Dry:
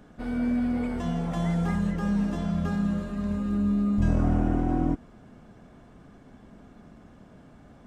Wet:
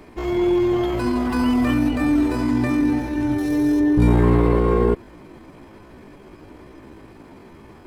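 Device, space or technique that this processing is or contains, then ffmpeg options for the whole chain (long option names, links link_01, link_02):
chipmunk voice: -filter_complex "[0:a]asetrate=64194,aresample=44100,atempo=0.686977,asettb=1/sr,asplit=3[link_01][link_02][link_03];[link_01]atrim=end=3.384[link_04];[link_02]atrim=start=3.38:end=3.8,asetpts=PTS-STARTPTS,afade=type=in:duration=0.004:curve=qsin,afade=type=out:start_time=0.416:duration=0.004:curve=qsin,bass=frequency=250:gain=-4,treble=frequency=4000:gain=11[link_05];[link_03]atrim=start=3.796[link_06];[link_04][link_05]acrossfade=duration=0.004:curve1=hsin:curve2=qsin[link_07];[link_07][link_06]acrossfade=duration=0.004:curve1=qsin:curve2=hsin,volume=7.5dB"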